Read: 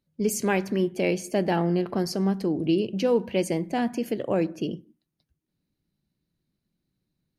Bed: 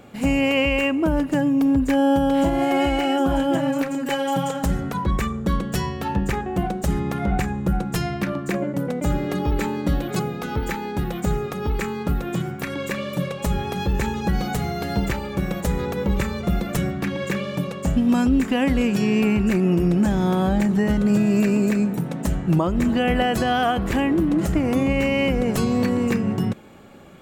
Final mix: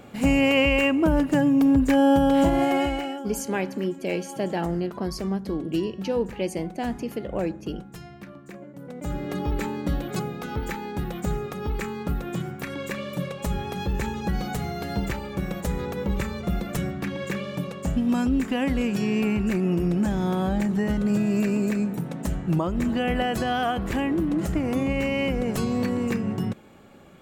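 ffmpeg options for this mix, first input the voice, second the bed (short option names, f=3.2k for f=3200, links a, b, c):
-filter_complex "[0:a]adelay=3050,volume=-3dB[a];[1:a]volume=13dB,afade=t=out:st=2.55:d=0.69:silence=0.133352,afade=t=in:st=8.78:d=0.6:silence=0.223872[b];[a][b]amix=inputs=2:normalize=0"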